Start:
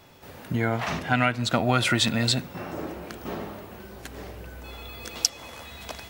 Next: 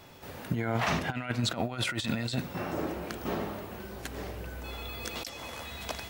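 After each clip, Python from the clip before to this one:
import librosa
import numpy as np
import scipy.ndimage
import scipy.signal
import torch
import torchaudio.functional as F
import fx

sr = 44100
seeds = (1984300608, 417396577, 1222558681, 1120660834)

y = fx.over_compress(x, sr, threshold_db=-27.0, ratio=-0.5)
y = y * librosa.db_to_amplitude(-2.5)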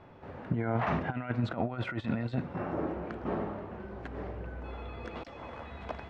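y = scipy.signal.sosfilt(scipy.signal.butter(2, 1500.0, 'lowpass', fs=sr, output='sos'), x)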